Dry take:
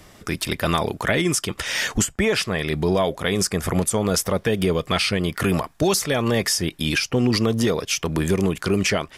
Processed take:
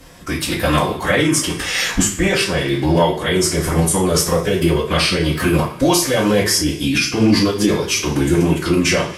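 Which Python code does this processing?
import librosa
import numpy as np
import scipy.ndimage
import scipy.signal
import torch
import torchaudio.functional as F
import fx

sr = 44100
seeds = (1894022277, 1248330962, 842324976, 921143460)

y = fx.rev_double_slope(x, sr, seeds[0], early_s=0.36, late_s=1.6, knee_db=-18, drr_db=-4.5)
y = fx.pitch_keep_formants(y, sr, semitones=-2.0)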